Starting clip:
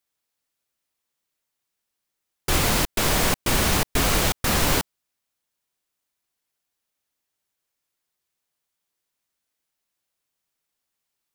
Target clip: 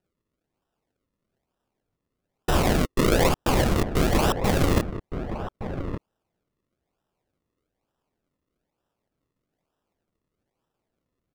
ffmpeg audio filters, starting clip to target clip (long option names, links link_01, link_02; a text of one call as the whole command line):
ffmpeg -i in.wav -filter_complex "[0:a]asettb=1/sr,asplit=3[link_01][link_02][link_03];[link_01]atrim=end=2.844[link_04];[link_02]atrim=start=2.84:end=3.28,asetpts=PTS-STARTPTS,afade=type=in:duration=0.004:curve=qsin,afade=type=out:start_time=0.436:duration=0.004:curve=qsin,equalizer=frequency=510:width_type=o:width=0.38:gain=10.5[link_05];[link_03]atrim=start=3.276[link_06];[link_04][link_05]acrossfade=duration=0.004:curve1=hsin:curve2=qsin[link_07];[link_07][link_06]acrossfade=duration=0.004:curve1=qsin:curve2=hsin,acrusher=samples=39:mix=1:aa=0.000001:lfo=1:lforange=39:lforate=1.1,asplit=2[link_08][link_09];[link_09]adelay=1166,volume=-9dB,highshelf=frequency=4000:gain=-26.2[link_10];[link_08][link_10]amix=inputs=2:normalize=0" out.wav